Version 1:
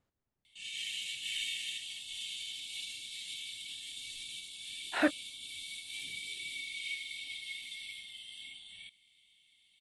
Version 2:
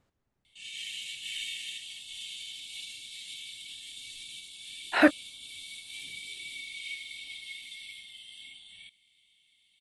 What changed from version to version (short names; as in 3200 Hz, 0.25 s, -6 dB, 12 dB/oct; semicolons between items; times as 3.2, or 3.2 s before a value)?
speech +8.0 dB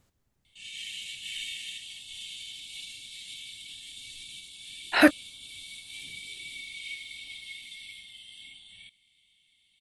speech: remove LPF 2000 Hz 6 dB/oct; master: add low shelf 200 Hz +7 dB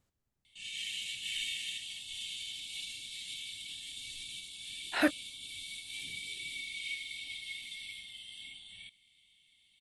speech -9.5 dB